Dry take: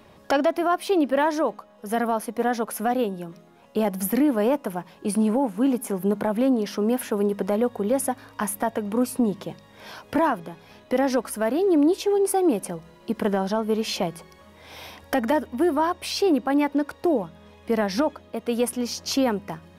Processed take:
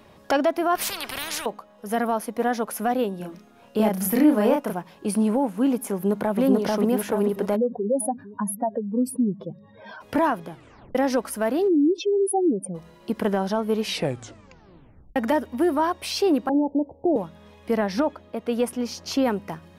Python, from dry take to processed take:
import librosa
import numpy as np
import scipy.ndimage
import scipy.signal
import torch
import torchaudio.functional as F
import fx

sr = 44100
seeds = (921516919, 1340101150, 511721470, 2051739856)

y = fx.spectral_comp(x, sr, ratio=10.0, at=(0.75, 1.46))
y = fx.doubler(y, sr, ms=33.0, db=-2.5, at=(3.17, 4.73))
y = fx.echo_throw(y, sr, start_s=5.93, length_s=0.47, ms=440, feedback_pct=55, wet_db=-0.5)
y = fx.spec_expand(y, sr, power=2.5, at=(7.55, 10.0), fade=0.02)
y = fx.spec_expand(y, sr, power=2.9, at=(11.67, 12.74), fade=0.02)
y = fx.steep_lowpass(y, sr, hz=850.0, slope=72, at=(16.49, 17.16))
y = fx.high_shelf(y, sr, hz=4100.0, db=-7.0, at=(17.76, 19.25))
y = fx.edit(y, sr, fx.tape_stop(start_s=10.5, length_s=0.45),
    fx.tape_stop(start_s=13.79, length_s=1.37), tone=tone)